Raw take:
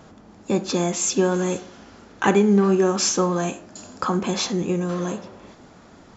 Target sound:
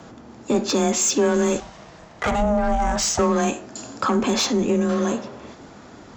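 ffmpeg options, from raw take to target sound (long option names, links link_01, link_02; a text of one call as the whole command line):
ffmpeg -i in.wav -filter_complex "[0:a]asplit=2[link_01][link_02];[link_02]alimiter=limit=-16dB:level=0:latency=1:release=26,volume=-1.5dB[link_03];[link_01][link_03]amix=inputs=2:normalize=0,asoftclip=type=tanh:threshold=-12.5dB,asettb=1/sr,asplit=3[link_04][link_05][link_06];[link_04]atrim=end=1.604[link_07];[link_05]atrim=start=1.6:end=3.19,asetpts=PTS-STARTPTS,afade=type=in:duration=0.004:curve=qsin,afade=type=out:start_time=1.586:duration=0.004:curve=qsin,aeval=exprs='val(0)*sin(2*PI*390*n/s)':channel_layout=same[link_08];[link_06]atrim=start=3.186[link_09];[link_07][link_08]acrossfade=duration=0.004:curve1=hsin:curve2=qsin[link_10];[link_10][link_09]acrossfade=duration=0.004:curve1=qsin:curve2=hsin,aeval=exprs='0.237*(cos(1*acos(clip(val(0)/0.237,-1,1)))-cos(1*PI/2))+0.00237*(cos(7*acos(clip(val(0)/0.237,-1,1)))-cos(7*PI/2))':channel_layout=same,afreqshift=23" out.wav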